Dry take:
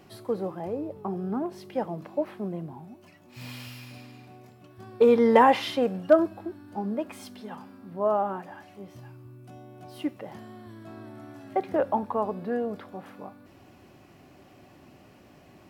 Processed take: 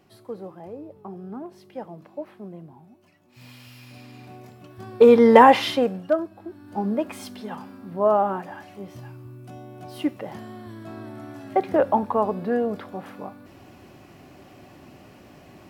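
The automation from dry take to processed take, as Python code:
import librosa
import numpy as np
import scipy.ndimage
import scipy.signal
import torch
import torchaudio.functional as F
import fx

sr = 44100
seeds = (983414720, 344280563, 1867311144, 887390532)

y = fx.gain(x, sr, db=fx.line((3.6, -6.0), (4.3, 6.0), (5.71, 6.0), (6.27, -6.5), (6.8, 5.5)))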